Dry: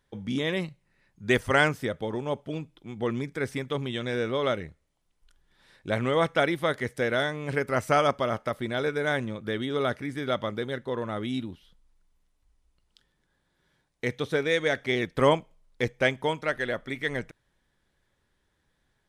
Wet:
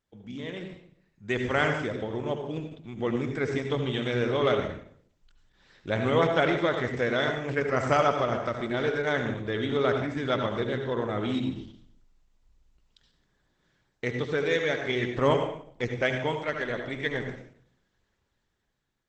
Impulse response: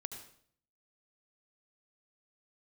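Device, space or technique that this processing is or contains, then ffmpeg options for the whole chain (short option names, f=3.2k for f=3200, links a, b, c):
speakerphone in a meeting room: -filter_complex "[1:a]atrim=start_sample=2205[a];[0:a][a]afir=irnorm=-1:irlink=0,dynaudnorm=f=420:g=7:m=11.5dB,volume=-6.5dB" -ar 48000 -c:a libopus -b:a 12k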